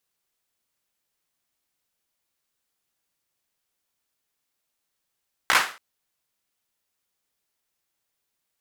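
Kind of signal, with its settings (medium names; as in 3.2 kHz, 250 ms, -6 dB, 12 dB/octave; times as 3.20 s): hand clap length 0.28 s, apart 16 ms, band 1.4 kHz, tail 0.37 s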